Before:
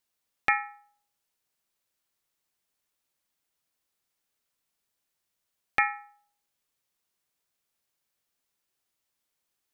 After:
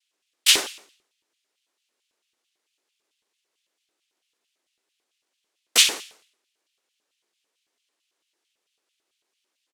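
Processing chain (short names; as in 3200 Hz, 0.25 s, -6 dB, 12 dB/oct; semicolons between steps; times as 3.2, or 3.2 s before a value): noise vocoder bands 1; harmoniser -12 st -5 dB, +5 st -1 dB; LFO high-pass square 4.5 Hz 360–2900 Hz; gain +3 dB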